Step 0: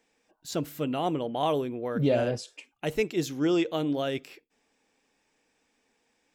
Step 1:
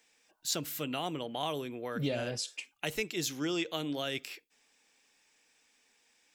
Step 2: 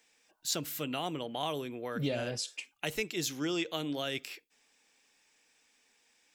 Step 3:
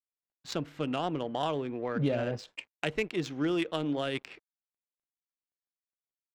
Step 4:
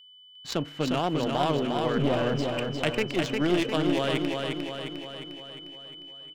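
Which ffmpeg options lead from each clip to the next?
-filter_complex "[0:a]acrossover=split=280[s0][s1];[s1]acompressor=threshold=0.0251:ratio=2.5[s2];[s0][s2]amix=inputs=2:normalize=0,tiltshelf=f=1200:g=-7.5"
-af anull
-filter_complex "[0:a]asplit=2[s0][s1];[s1]acompressor=threshold=0.00794:ratio=6,volume=0.708[s2];[s0][s2]amix=inputs=2:normalize=0,aeval=exprs='sgn(val(0))*max(abs(val(0))-0.00188,0)':c=same,adynamicsmooth=sensitivity=2:basefreq=1500,volume=1.5"
-filter_complex "[0:a]aeval=exprs='clip(val(0),-1,0.0266)':c=same,aeval=exprs='val(0)+0.00178*sin(2*PI*3000*n/s)':c=same,asplit=2[s0][s1];[s1]aecho=0:1:354|708|1062|1416|1770|2124|2478|2832:0.631|0.36|0.205|0.117|0.0666|0.038|0.0216|0.0123[s2];[s0][s2]amix=inputs=2:normalize=0,volume=1.78"

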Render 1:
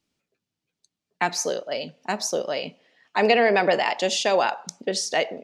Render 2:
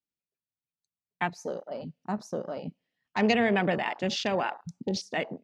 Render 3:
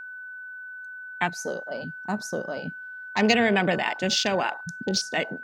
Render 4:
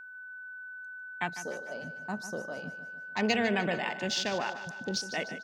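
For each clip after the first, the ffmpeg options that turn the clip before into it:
-af "afwtdn=0.0316,asubboost=boost=8:cutoff=190,volume=0.562"
-af "crystalizer=i=2.5:c=0,aeval=exprs='val(0)+0.0112*sin(2*PI*1500*n/s)':c=same,volume=1.33"
-af "aecho=1:1:150|300|450|600|750:0.237|0.121|0.0617|0.0315|0.016,volume=0.422"

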